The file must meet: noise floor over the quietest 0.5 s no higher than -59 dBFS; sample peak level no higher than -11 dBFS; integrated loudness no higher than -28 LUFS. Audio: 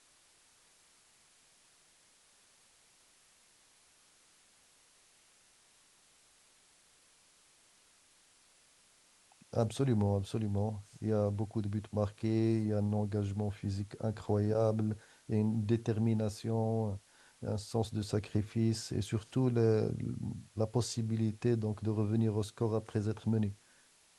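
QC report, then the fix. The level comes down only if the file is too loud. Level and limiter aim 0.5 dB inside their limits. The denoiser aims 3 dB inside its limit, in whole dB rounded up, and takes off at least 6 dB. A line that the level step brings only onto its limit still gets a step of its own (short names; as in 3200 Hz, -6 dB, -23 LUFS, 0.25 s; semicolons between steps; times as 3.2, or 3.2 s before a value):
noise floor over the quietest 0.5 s -66 dBFS: OK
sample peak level -16.5 dBFS: OK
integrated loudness -34.0 LUFS: OK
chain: none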